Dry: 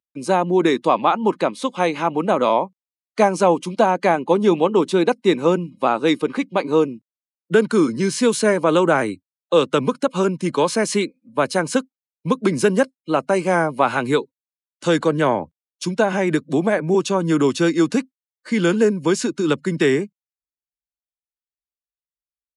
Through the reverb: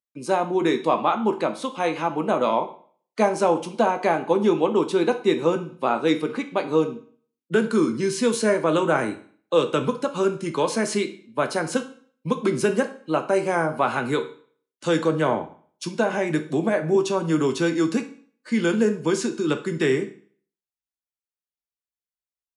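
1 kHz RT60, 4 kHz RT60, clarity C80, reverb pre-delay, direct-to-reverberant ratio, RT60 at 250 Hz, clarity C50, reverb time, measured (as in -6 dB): 0.50 s, 0.45 s, 17.0 dB, 8 ms, 6.0 dB, 0.50 s, 13.0 dB, 0.50 s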